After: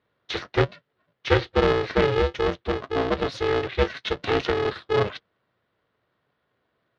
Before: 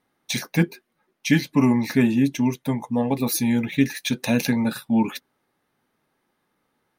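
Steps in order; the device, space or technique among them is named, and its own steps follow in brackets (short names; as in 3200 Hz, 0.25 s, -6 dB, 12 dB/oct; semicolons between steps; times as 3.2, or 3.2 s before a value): ring modulator pedal into a guitar cabinet (polarity switched at an audio rate 210 Hz; speaker cabinet 90–3900 Hz, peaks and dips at 120 Hz +7 dB, 850 Hz -5 dB, 2400 Hz -5 dB)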